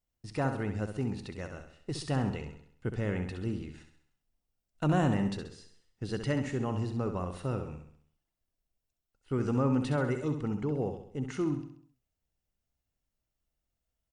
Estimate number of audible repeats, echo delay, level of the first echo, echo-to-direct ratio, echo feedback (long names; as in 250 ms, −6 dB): 5, 66 ms, −8.0 dB, −7.0 dB, 48%